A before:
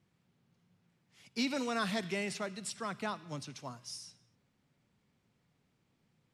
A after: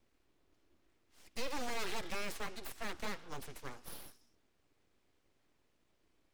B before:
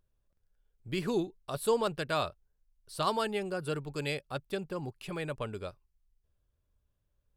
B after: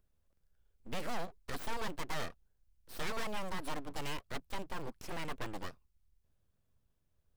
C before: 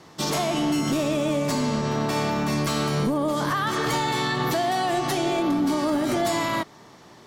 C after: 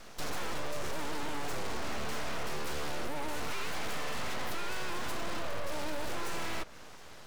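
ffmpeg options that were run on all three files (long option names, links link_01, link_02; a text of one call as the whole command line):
ffmpeg -i in.wav -filter_complex "[0:a]acrossover=split=260|1800[link_01][link_02][link_03];[link_01]acompressor=threshold=-31dB:ratio=4[link_04];[link_02]acompressor=threshold=-28dB:ratio=4[link_05];[link_03]acompressor=threshold=-41dB:ratio=4[link_06];[link_04][link_05][link_06]amix=inputs=3:normalize=0,asplit=2[link_07][link_08];[link_08]acrusher=bits=3:dc=4:mix=0:aa=0.000001,volume=-10dB[link_09];[link_07][link_09]amix=inputs=2:normalize=0,aeval=exprs='abs(val(0))':channel_layout=same,aeval=exprs='(tanh(20*val(0)+0.4)-tanh(0.4))/20':channel_layout=same,volume=2.5dB" out.wav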